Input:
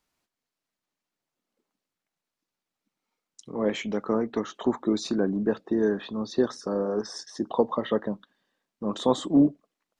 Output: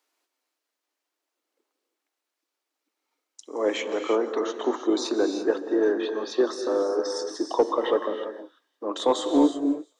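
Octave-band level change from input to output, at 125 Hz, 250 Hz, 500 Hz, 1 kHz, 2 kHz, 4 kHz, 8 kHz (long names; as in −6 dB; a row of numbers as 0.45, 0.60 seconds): below −15 dB, −0.5 dB, +3.5 dB, +4.0 dB, +3.5 dB, +4.0 dB, +4.0 dB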